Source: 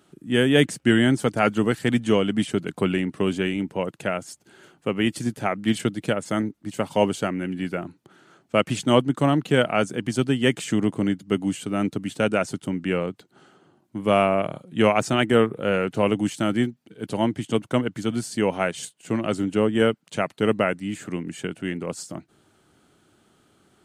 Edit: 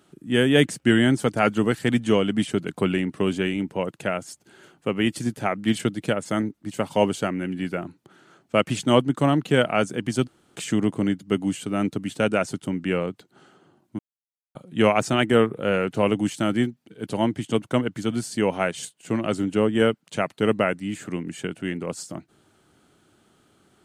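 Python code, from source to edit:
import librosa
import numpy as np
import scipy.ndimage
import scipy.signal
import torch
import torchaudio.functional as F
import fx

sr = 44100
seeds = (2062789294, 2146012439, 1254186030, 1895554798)

y = fx.edit(x, sr, fx.room_tone_fill(start_s=10.27, length_s=0.29, crossfade_s=0.02),
    fx.silence(start_s=13.99, length_s=0.56), tone=tone)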